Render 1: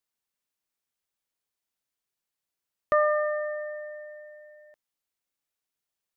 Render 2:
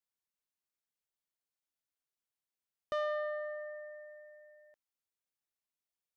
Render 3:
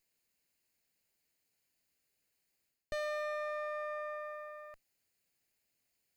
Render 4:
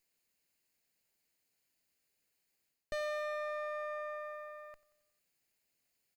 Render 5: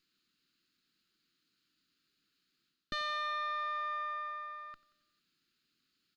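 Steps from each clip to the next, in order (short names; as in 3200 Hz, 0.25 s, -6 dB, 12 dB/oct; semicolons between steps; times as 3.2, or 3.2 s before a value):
soft clip -20 dBFS, distortion -14 dB; gain -8.5 dB
minimum comb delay 0.44 ms; reverse; compressor, threshold -49 dBFS, peak gain reduction 14.5 dB; reverse; gain +13 dB
bell 65 Hz -3 dB 2 oct; feedback echo 90 ms, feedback 59%, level -20 dB
EQ curve 100 Hz 0 dB, 150 Hz +8 dB, 320 Hz +11 dB, 560 Hz -11 dB, 890 Hz -11 dB, 1300 Hz +13 dB, 2100 Hz -1 dB, 3700 Hz +13 dB, 8600 Hz -10 dB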